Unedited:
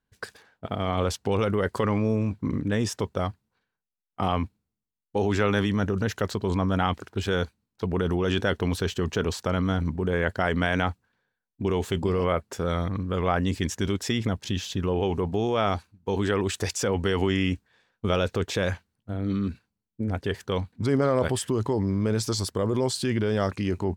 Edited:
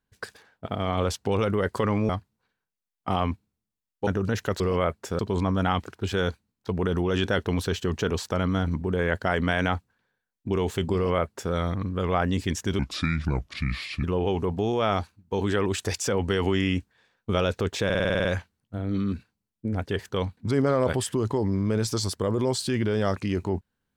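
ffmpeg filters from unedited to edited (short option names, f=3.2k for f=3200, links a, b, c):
-filter_complex "[0:a]asplit=15[a][b][c][d][e][f][g][h][i][j][k][l][m][n][o];[a]atrim=end=2.092[p];[b]atrim=start=3.208:end=5.192[q];[c]atrim=start=5.798:end=6.332[r];[d]atrim=start=12.078:end=12.672[s];[e]atrim=start=6.328:end=13.934[t];[f]atrim=start=13.93:end=14.79,asetpts=PTS-STARTPTS,asetrate=30429,aresample=44100,atrim=end_sample=54965,asetpts=PTS-STARTPTS[u];[g]atrim=start=14.786:end=18.652[v];[h]atrim=start=18.598:end=18.652[w];[i]atrim=start=18.598:end=18.652[x];[j]atrim=start=18.598:end=18.652[y];[k]atrim=start=18.598:end=18.652[z];[l]atrim=start=18.598:end=18.652[aa];[m]atrim=start=18.598:end=18.652[ab];[n]atrim=start=18.598:end=18.652[ac];[o]atrim=start=18.598[ad];[p][q]acrossfade=d=0.004:c1=hsin:c2=hsin[ae];[ae][r]acrossfade=d=0.004:c1=hsin:c2=hsin[af];[af][s]acrossfade=d=0.004:c1=hsin:c2=hsin[ag];[ag][t]acrossfade=d=0.004:c1=hsin:c2=hsin[ah];[ah][u]acrossfade=d=0.004:c1=hsin:c2=hsin[ai];[ai][v]acrossfade=d=0.004:c1=hsin:c2=hsin[aj];[aj][w]acrossfade=d=0.004:c1=hsin:c2=hsin[ak];[ak][x]acrossfade=d=0.004:c1=hsin:c2=hsin[al];[al][y]acrossfade=d=0.004:c1=hsin:c2=hsin[am];[am][z]acrossfade=d=0.004:c1=hsin:c2=hsin[an];[an][aa]acrossfade=d=0.004:c1=hsin:c2=hsin[ao];[ao][ab]acrossfade=d=0.004:c1=hsin:c2=hsin[ap];[ap][ac]acrossfade=d=0.004:c1=hsin:c2=hsin[aq];[aq][ad]acrossfade=d=0.004:c1=hsin:c2=hsin"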